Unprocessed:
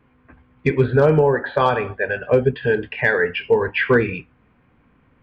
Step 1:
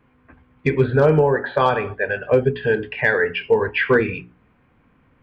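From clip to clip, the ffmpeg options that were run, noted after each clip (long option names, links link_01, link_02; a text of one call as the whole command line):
ffmpeg -i in.wav -af "bandreject=frequency=60:width_type=h:width=6,bandreject=frequency=120:width_type=h:width=6,bandreject=frequency=180:width_type=h:width=6,bandreject=frequency=240:width_type=h:width=6,bandreject=frequency=300:width_type=h:width=6,bandreject=frequency=360:width_type=h:width=6,bandreject=frequency=420:width_type=h:width=6" out.wav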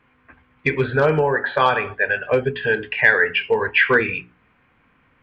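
ffmpeg -i in.wav -af "equalizer=frequency=2300:width_type=o:width=2.9:gain=10.5,volume=-5dB" out.wav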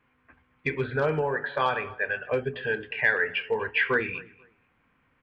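ffmpeg -i in.wav -filter_complex "[0:a]asplit=2[link_01][link_02];[link_02]adelay=245,lowpass=frequency=2900:poles=1,volume=-21.5dB,asplit=2[link_03][link_04];[link_04]adelay=245,lowpass=frequency=2900:poles=1,volume=0.24[link_05];[link_01][link_03][link_05]amix=inputs=3:normalize=0,volume=-8.5dB" out.wav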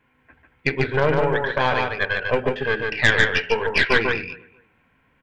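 ffmpeg -i in.wav -af "asuperstop=centerf=1200:order=4:qfactor=7.6,aeval=exprs='0.355*(cos(1*acos(clip(val(0)/0.355,-1,1)))-cos(1*PI/2))+0.0891*(cos(4*acos(clip(val(0)/0.355,-1,1)))-cos(4*PI/2))':channel_layout=same,aecho=1:1:146:0.631,volume=4.5dB" out.wav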